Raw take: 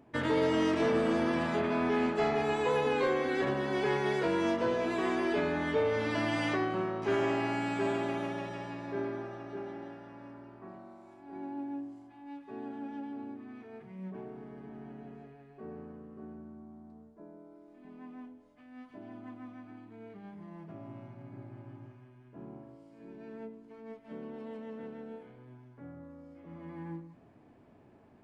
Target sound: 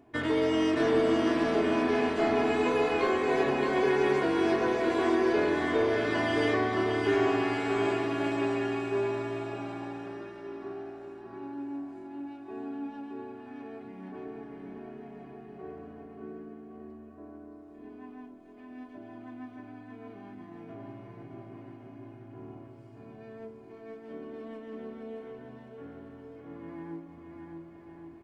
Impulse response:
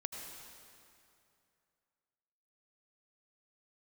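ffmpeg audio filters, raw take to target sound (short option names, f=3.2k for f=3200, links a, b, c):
-af "aecho=1:1:2.8:0.49,aecho=1:1:620|1116|1513|1830|2084:0.631|0.398|0.251|0.158|0.1"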